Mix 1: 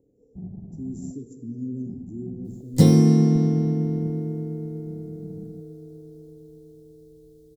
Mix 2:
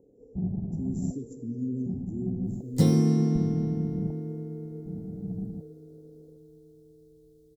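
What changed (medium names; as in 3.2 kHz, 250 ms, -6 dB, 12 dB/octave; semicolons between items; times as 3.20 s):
first sound +7.0 dB; second sound -6.5 dB; master: add peaking EQ 1.3 kHz +3 dB 0.41 oct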